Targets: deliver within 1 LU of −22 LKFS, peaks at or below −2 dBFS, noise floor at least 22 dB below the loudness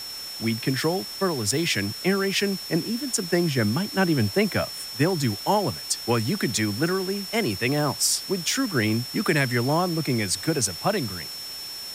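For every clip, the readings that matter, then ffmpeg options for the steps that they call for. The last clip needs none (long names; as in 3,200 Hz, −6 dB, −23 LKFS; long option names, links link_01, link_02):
interfering tone 5,400 Hz; level of the tone −34 dBFS; background noise floor −36 dBFS; target noise floor −47 dBFS; integrated loudness −24.5 LKFS; sample peak −9.0 dBFS; target loudness −22.0 LKFS
→ -af "bandreject=frequency=5400:width=30"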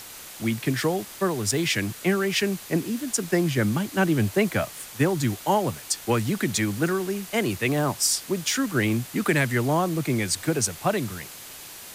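interfering tone none found; background noise floor −42 dBFS; target noise floor −47 dBFS
→ -af "afftdn=noise_reduction=6:noise_floor=-42"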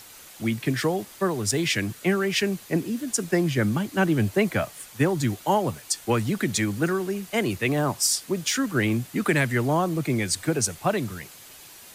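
background noise floor −47 dBFS; integrated loudness −25.0 LKFS; sample peak −10.0 dBFS; target loudness −22.0 LKFS
→ -af "volume=3dB"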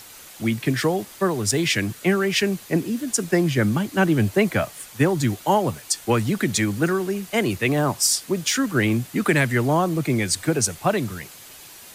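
integrated loudness −22.0 LKFS; sample peak −7.0 dBFS; background noise floor −44 dBFS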